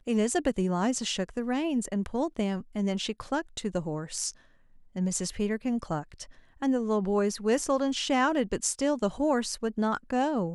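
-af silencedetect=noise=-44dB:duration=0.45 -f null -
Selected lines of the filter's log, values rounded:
silence_start: 4.33
silence_end: 4.96 | silence_duration: 0.62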